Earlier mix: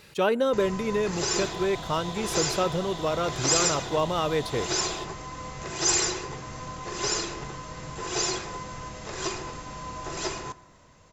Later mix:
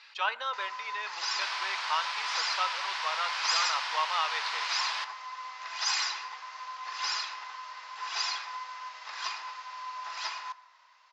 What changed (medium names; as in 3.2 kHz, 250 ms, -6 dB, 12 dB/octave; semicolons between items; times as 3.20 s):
speech: send +10.5 dB; second sound: remove two resonant band-passes 1.6 kHz, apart 2.3 oct; master: add Chebyshev band-pass 930–5000 Hz, order 3